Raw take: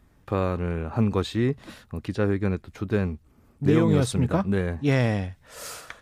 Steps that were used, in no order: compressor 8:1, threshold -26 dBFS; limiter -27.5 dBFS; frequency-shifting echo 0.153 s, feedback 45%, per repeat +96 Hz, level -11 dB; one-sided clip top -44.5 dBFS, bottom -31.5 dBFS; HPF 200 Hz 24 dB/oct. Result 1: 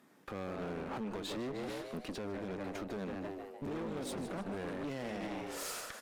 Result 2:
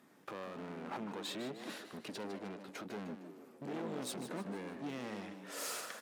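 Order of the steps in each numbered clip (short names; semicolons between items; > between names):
frequency-shifting echo > compressor > HPF > limiter > one-sided clip; compressor > limiter > one-sided clip > frequency-shifting echo > HPF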